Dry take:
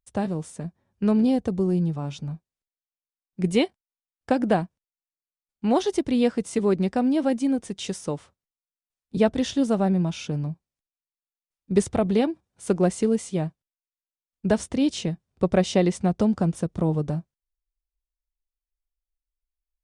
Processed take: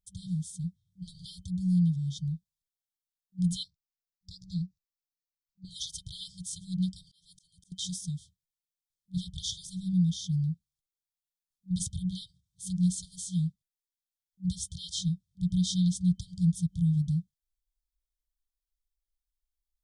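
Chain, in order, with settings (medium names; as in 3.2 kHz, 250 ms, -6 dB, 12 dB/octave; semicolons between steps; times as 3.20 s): FFT band-reject 190–3100 Hz; 3.63–5.65 s: static phaser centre 2.1 kHz, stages 8; 7.02–7.72 s: slow attack 464 ms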